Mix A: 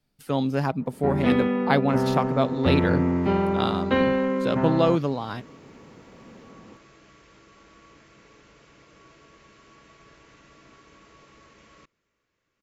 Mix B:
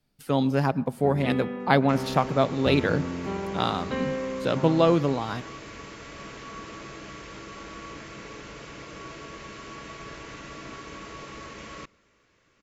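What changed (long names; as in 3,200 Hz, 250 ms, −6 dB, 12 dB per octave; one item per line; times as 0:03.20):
first sound −11.5 dB
second sound +12.0 dB
reverb: on, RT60 0.70 s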